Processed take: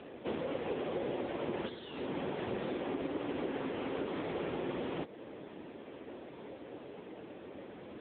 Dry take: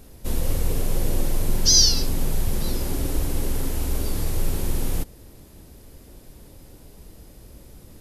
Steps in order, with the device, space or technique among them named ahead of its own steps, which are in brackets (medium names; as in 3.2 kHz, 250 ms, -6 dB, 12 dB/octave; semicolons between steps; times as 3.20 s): voicemail (band-pass 320–2900 Hz; compression 8:1, threshold -41 dBFS, peak gain reduction 17.5 dB; trim +9.5 dB; AMR-NB 6.7 kbps 8 kHz)